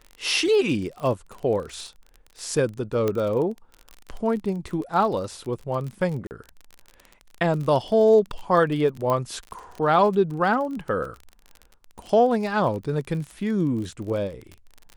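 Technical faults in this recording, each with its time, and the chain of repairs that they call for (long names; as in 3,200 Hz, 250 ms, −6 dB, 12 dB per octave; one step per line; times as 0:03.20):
surface crackle 33 per second −31 dBFS
0:03.08: click −12 dBFS
0:06.27–0:06.31: drop-out 39 ms
0:09.10: click −13 dBFS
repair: click removal
repair the gap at 0:06.27, 39 ms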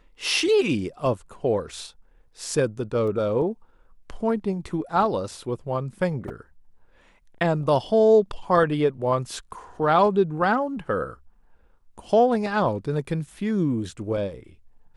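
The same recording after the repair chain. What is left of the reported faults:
0:03.08: click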